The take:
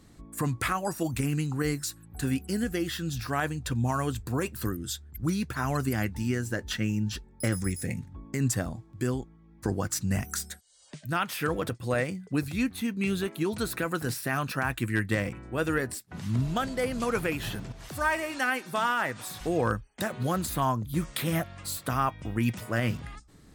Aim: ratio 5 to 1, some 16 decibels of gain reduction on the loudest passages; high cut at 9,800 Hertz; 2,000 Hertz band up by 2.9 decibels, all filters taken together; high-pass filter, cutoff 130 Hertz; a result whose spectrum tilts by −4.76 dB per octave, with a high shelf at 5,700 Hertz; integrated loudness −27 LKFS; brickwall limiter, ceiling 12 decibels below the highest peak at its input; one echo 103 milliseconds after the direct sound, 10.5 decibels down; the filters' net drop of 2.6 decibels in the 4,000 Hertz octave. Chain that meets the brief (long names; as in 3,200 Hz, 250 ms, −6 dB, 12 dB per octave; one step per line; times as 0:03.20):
high-pass filter 130 Hz
low-pass filter 9,800 Hz
parametric band 2,000 Hz +5 dB
parametric band 4,000 Hz −3.5 dB
high-shelf EQ 5,700 Hz −5 dB
downward compressor 5 to 1, threshold −40 dBFS
brickwall limiter −36 dBFS
single-tap delay 103 ms −10.5 dB
level +19 dB